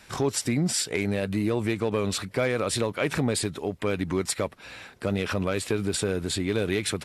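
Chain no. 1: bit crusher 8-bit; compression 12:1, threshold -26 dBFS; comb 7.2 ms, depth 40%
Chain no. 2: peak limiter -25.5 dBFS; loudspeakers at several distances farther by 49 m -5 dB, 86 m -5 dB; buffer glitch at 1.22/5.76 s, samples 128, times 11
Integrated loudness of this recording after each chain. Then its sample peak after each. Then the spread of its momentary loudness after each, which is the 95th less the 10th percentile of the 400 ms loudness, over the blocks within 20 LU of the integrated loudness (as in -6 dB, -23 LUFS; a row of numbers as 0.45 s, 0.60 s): -31.0 LUFS, -33.0 LUFS; -16.0 dBFS, -19.5 dBFS; 4 LU, 4 LU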